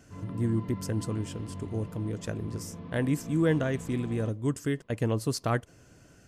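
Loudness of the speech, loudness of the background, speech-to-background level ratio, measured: −31.0 LKFS, −42.5 LKFS, 11.5 dB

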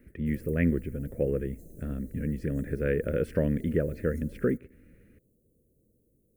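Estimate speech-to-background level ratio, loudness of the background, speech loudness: 19.5 dB, −50.0 LKFS, −30.5 LKFS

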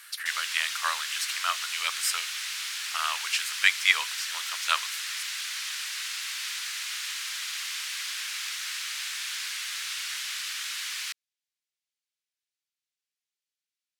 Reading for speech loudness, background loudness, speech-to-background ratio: −28.0 LKFS, −31.5 LKFS, 3.5 dB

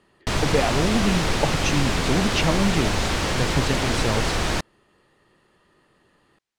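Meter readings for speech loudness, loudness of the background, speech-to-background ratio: −25.5 LKFS, −24.0 LKFS, −1.5 dB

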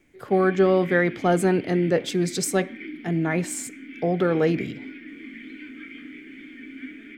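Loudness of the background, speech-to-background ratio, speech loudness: −39.5 LKFS, 16.5 dB, −23.0 LKFS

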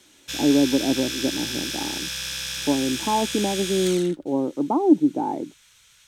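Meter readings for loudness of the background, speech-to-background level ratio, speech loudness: −28.0 LKFS, 4.5 dB, −23.5 LKFS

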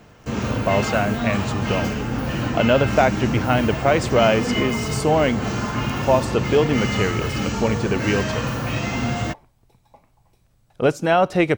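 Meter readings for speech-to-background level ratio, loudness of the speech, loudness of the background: 3.0 dB, −21.5 LKFS, −24.5 LKFS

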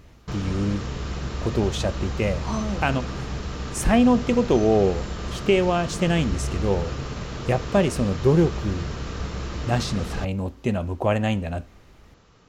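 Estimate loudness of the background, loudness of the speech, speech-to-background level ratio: −32.0 LKFS, −24.0 LKFS, 8.0 dB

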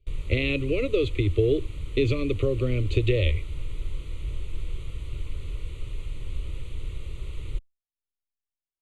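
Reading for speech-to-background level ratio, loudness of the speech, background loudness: 12.0 dB, −26.0 LKFS, −38.0 LKFS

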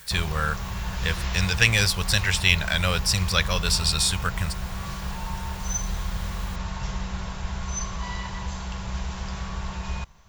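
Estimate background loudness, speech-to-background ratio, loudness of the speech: −32.5 LKFS, 9.5 dB, −23.0 LKFS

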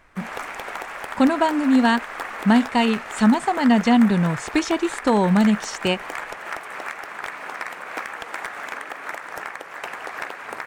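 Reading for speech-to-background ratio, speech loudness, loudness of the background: 12.5 dB, −19.5 LKFS, −32.0 LKFS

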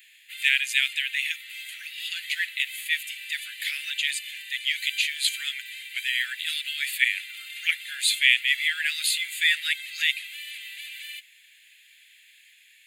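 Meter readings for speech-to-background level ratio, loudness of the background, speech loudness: 11.5 dB, −36.5 LKFS, −25.0 LKFS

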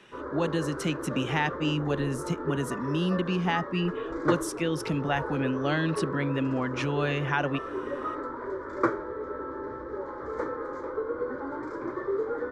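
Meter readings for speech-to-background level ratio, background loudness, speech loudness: 4.5 dB, −34.0 LKFS, −29.5 LKFS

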